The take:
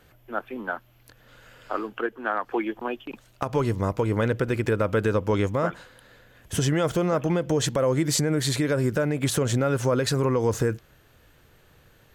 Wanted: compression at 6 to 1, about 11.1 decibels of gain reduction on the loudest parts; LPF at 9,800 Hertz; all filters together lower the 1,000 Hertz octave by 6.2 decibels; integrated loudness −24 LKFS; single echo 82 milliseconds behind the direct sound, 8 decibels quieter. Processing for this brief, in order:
low-pass filter 9,800 Hz
parametric band 1,000 Hz −8.5 dB
downward compressor 6 to 1, threshold −32 dBFS
single-tap delay 82 ms −8 dB
level +12 dB

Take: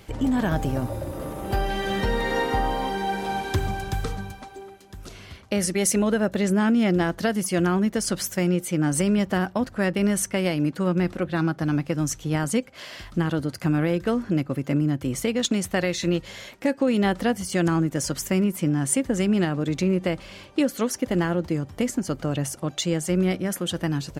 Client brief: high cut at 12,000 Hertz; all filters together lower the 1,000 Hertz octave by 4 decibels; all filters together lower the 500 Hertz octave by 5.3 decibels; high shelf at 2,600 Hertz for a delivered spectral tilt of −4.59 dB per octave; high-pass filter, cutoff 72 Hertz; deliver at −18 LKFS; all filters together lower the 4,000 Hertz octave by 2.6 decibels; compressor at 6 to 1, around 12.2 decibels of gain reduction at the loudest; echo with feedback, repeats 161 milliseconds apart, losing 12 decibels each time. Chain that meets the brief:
high-pass filter 72 Hz
low-pass filter 12,000 Hz
parametric band 500 Hz −6.5 dB
parametric band 1,000 Hz −3 dB
high-shelf EQ 2,600 Hz +4.5 dB
parametric band 4,000 Hz −7.5 dB
downward compressor 6 to 1, threshold −30 dBFS
repeating echo 161 ms, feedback 25%, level −12 dB
level +15.5 dB

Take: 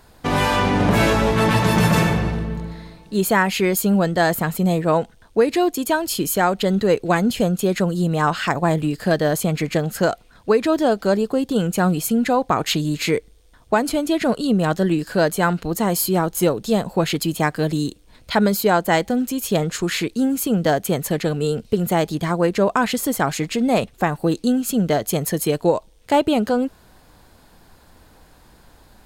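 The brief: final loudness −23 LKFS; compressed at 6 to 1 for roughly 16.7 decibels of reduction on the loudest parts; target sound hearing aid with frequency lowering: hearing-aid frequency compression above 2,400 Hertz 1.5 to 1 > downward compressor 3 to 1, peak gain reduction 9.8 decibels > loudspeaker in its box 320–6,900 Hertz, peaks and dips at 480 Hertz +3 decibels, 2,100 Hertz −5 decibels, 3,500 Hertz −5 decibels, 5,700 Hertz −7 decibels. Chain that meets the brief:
downward compressor 6 to 1, threshold −31 dBFS
hearing-aid frequency compression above 2,400 Hz 1.5 to 1
downward compressor 3 to 1, threshold −39 dBFS
loudspeaker in its box 320–6,900 Hz, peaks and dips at 480 Hz +3 dB, 2,100 Hz −5 dB, 3,500 Hz −5 dB, 5,700 Hz −7 dB
level +21 dB

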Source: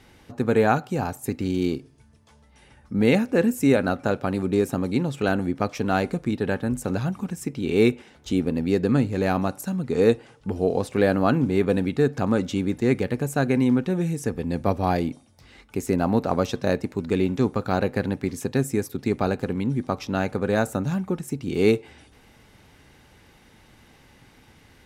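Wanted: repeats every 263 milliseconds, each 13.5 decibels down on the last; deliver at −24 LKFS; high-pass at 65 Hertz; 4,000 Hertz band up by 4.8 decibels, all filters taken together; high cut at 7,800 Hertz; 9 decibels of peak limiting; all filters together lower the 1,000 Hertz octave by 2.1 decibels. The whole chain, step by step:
high-pass filter 65 Hz
low-pass filter 7,800 Hz
parametric band 1,000 Hz −3.5 dB
parametric band 4,000 Hz +6 dB
brickwall limiter −14.5 dBFS
repeating echo 263 ms, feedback 21%, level −13.5 dB
level +3 dB

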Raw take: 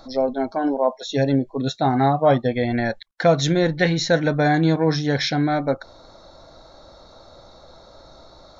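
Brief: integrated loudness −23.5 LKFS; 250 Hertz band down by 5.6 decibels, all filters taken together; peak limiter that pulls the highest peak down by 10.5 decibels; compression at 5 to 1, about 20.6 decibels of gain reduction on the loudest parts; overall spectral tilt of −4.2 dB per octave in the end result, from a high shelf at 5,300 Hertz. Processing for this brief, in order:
parametric band 250 Hz −8 dB
high-shelf EQ 5,300 Hz −4 dB
downward compressor 5 to 1, threshold −37 dBFS
level +19.5 dB
brickwall limiter −13 dBFS

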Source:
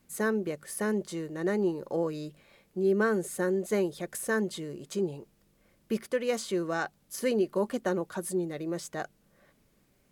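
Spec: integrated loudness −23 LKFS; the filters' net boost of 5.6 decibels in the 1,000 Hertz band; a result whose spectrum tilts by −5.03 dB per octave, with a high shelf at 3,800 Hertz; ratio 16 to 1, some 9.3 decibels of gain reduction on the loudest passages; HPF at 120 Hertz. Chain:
high-pass filter 120 Hz
parametric band 1,000 Hz +7.5 dB
high-shelf EQ 3,800 Hz −5.5 dB
downward compressor 16 to 1, threshold −30 dBFS
level +14 dB

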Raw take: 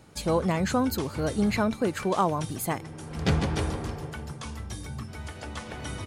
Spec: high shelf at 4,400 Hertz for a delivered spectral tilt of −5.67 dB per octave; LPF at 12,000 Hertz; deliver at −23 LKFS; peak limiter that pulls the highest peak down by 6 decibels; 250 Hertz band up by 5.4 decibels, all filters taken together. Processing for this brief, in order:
low-pass filter 12,000 Hz
parametric band 250 Hz +7 dB
high-shelf EQ 4,400 Hz +4.5 dB
level +4.5 dB
brickwall limiter −10.5 dBFS

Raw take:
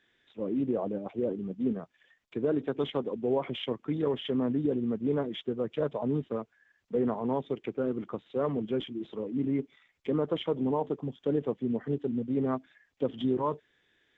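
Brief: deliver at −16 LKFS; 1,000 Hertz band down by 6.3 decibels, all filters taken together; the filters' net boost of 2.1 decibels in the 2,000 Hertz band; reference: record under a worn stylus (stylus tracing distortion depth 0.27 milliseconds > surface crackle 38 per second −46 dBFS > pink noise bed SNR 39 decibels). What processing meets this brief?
parametric band 1,000 Hz −9 dB
parametric band 2,000 Hz +5.5 dB
stylus tracing distortion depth 0.27 ms
surface crackle 38 per second −46 dBFS
pink noise bed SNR 39 dB
level +16.5 dB

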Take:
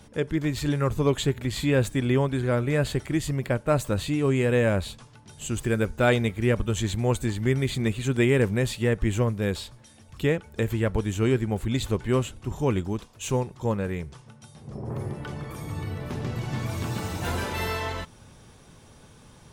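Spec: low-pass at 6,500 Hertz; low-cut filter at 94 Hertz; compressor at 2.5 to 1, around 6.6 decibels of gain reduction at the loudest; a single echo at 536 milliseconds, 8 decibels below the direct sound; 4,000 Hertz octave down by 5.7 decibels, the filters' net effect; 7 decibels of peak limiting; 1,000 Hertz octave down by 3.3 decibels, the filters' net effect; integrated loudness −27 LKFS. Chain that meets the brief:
high-pass filter 94 Hz
low-pass filter 6,500 Hz
parametric band 1,000 Hz −4 dB
parametric band 4,000 Hz −6.5 dB
downward compressor 2.5 to 1, threshold −28 dBFS
brickwall limiter −24 dBFS
single-tap delay 536 ms −8 dB
level +7.5 dB

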